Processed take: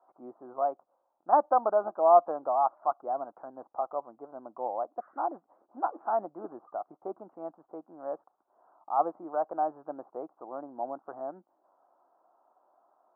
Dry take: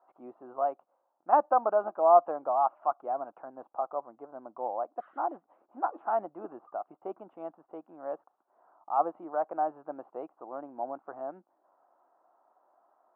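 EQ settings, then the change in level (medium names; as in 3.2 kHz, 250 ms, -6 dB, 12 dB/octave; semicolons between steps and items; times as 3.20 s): low-pass 1.6 kHz 24 dB/octave; distance through air 300 m; +1.5 dB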